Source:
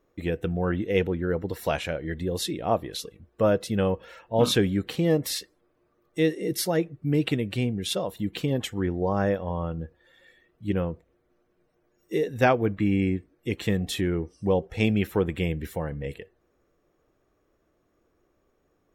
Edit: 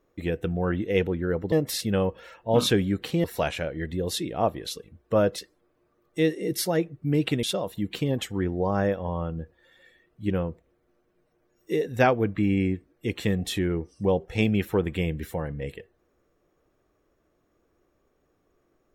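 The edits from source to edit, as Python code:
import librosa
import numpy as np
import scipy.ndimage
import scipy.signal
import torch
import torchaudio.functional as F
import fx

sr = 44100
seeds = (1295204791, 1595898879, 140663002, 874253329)

y = fx.edit(x, sr, fx.swap(start_s=1.52, length_s=2.14, other_s=5.09, other_length_s=0.29),
    fx.cut(start_s=7.43, length_s=0.42), tone=tone)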